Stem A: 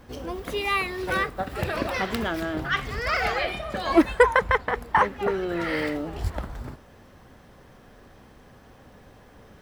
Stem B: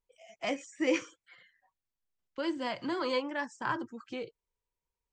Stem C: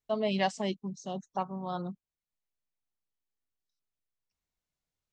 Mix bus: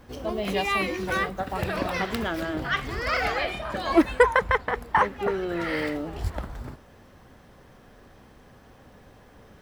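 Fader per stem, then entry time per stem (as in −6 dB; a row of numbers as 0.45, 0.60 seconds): −1.0, −6.0, −0.5 decibels; 0.00, 0.00, 0.15 seconds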